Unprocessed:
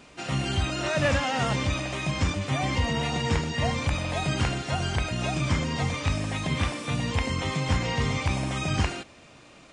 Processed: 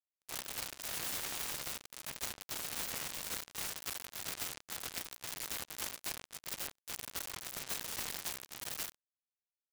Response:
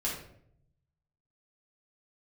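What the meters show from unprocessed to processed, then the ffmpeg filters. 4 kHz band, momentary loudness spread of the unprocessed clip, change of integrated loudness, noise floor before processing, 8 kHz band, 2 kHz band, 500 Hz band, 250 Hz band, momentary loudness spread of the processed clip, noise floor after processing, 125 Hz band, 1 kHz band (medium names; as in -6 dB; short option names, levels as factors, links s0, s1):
-10.5 dB, 3 LU, -12.5 dB, -52 dBFS, -2.0 dB, -15.5 dB, -21.5 dB, -26.0 dB, 5 LU, under -85 dBFS, -32.0 dB, -18.5 dB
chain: -af "equalizer=f=2600:t=o:w=2.9:g=7,bandreject=f=61.9:t=h:w=4,bandreject=f=123.8:t=h:w=4,bandreject=f=185.7:t=h:w=4,bandreject=f=247.6:t=h:w=4,bandreject=f=309.5:t=h:w=4,bandreject=f=371.4:t=h:w=4,bandreject=f=433.3:t=h:w=4,bandreject=f=495.2:t=h:w=4,bandreject=f=557.1:t=h:w=4,bandreject=f=619:t=h:w=4,bandreject=f=680.9:t=h:w=4,bandreject=f=742.8:t=h:w=4,bandreject=f=804.7:t=h:w=4,bandreject=f=866.6:t=h:w=4,bandreject=f=928.5:t=h:w=4,bandreject=f=990.4:t=h:w=4,bandreject=f=1052.3:t=h:w=4,bandreject=f=1114.2:t=h:w=4,bandreject=f=1176.1:t=h:w=4,bandreject=f=1238:t=h:w=4,bandreject=f=1299.9:t=h:w=4,bandreject=f=1361.8:t=h:w=4,bandreject=f=1423.7:t=h:w=4,bandreject=f=1485.6:t=h:w=4,bandreject=f=1547.5:t=h:w=4,bandreject=f=1609.4:t=h:w=4,bandreject=f=1671.3:t=h:w=4,bandreject=f=1733.2:t=h:w=4,bandreject=f=1795.1:t=h:w=4,aeval=exprs='sgn(val(0))*max(abs(val(0))-0.00282,0)':c=same,adynamicsmooth=sensitivity=3.5:basefreq=4800,aeval=exprs='(mod(8.91*val(0)+1,2)-1)/8.91':c=same,acrusher=bits=2:mix=0:aa=0.5,volume=2.24"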